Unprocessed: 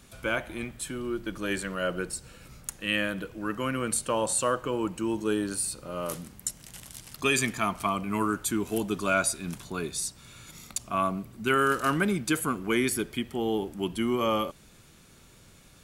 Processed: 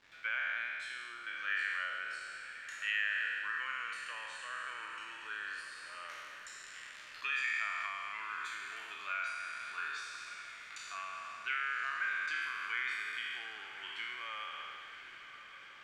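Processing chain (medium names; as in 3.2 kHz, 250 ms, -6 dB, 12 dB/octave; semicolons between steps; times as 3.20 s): spectral sustain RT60 1.74 s; compression 12:1, threshold -26 dBFS, peak gain reduction 10 dB; resonant high-pass 1.8 kHz, resonance Q 3.6; word length cut 8-bit, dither none; distance through air 190 m; echo that smears into a reverb 1112 ms, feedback 61%, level -12.5 dB; trim -6.5 dB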